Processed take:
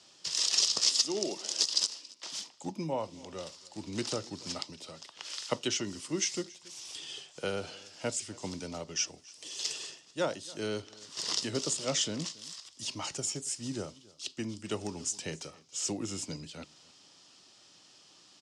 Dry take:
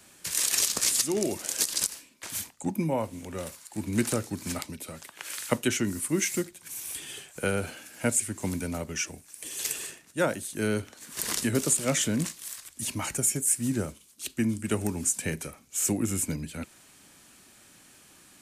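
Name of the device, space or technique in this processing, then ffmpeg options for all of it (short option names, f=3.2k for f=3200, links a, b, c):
car door speaker: -filter_complex "[0:a]equalizer=f=3.1k:w=1.7:g=4.5,asettb=1/sr,asplit=3[a][b][c];[a]atrim=end=0.854[d];[b]atrim=start=0.85:end=2.53,asetpts=PTS-STARTPTS,afade=t=in:d=0.004:c=qsin,afade=t=out:st=1.676:d=0.004:c=qsin,highpass=f=160:w=0.5412,highpass=f=160:w=1.3066[e];[c]atrim=start=2.526[f];[d][e]acrossfade=d=0.004:c1=hsin:c2=qsin[g];[g][f]acrossfade=d=0.004:c1=qsin:c2=hsin,highpass=110,equalizer=f=230:t=q:w=4:g=-6,equalizer=f=1.6k:t=q:w=4:g=-9,equalizer=f=2.3k:t=q:w=4:g=-9,equalizer=f=5.1k:t=q:w=4:g=9,lowpass=f=6.6k:w=0.5412,lowpass=f=6.6k:w=1.3066,lowshelf=f=370:g=-5.5,aecho=1:1:278:0.075,volume=-2.5dB"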